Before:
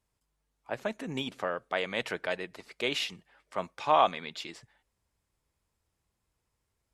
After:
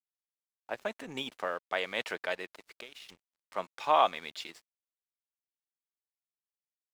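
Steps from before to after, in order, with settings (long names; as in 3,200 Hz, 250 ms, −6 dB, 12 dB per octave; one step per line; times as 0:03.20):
high-pass filter 400 Hz 6 dB per octave
0:02.52–0:03.09: downward compressor 16 to 1, threshold −43 dBFS, peak gain reduction 18 dB
dead-zone distortion −54.5 dBFS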